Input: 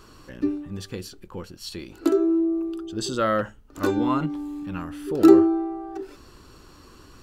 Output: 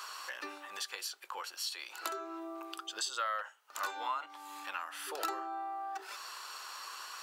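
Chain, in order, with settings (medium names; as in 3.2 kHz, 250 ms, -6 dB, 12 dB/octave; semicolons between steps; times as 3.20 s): high-pass 800 Hz 24 dB/octave; compression 3:1, threshold -49 dBFS, peak gain reduction 19 dB; trim +9.5 dB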